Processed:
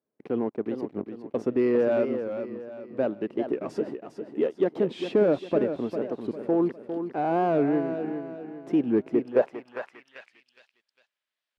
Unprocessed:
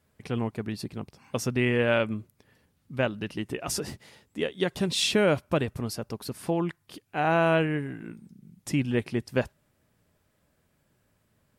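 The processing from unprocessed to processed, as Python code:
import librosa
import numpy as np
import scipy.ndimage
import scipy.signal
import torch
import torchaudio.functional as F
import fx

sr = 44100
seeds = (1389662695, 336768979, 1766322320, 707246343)

y = scipy.signal.sosfilt(scipy.signal.butter(2, 94.0, 'highpass', fs=sr, output='sos'), x)
y = fx.bass_treble(y, sr, bass_db=-13, treble_db=-6)
y = fx.leveller(y, sr, passes=3)
y = fx.echo_feedback(y, sr, ms=403, feedback_pct=40, wet_db=-8.5)
y = fx.filter_sweep_bandpass(y, sr, from_hz=300.0, to_hz=3600.0, start_s=9.1, end_s=10.47, q=1.3)
y = fx.record_warp(y, sr, rpm=45.0, depth_cents=160.0)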